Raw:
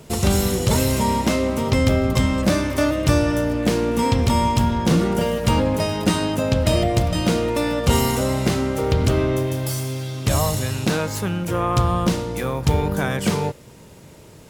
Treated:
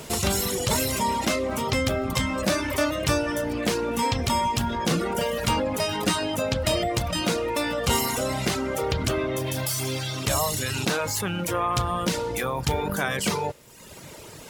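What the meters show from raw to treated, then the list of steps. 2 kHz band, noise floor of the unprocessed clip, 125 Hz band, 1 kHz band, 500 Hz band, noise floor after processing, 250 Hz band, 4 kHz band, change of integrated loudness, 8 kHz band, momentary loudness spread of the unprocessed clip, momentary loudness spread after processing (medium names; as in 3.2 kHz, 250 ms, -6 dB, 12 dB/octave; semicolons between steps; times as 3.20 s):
-0.5 dB, -44 dBFS, -9.0 dB, -2.5 dB, -4.5 dB, -43 dBFS, -8.0 dB, 0.0 dB, -5.0 dB, 0.0 dB, 5 LU, 4 LU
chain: reverb removal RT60 0.88 s; bass shelf 440 Hz -9.5 dB; in parallel at -2.5 dB: compressor with a negative ratio -37 dBFS, ratio -1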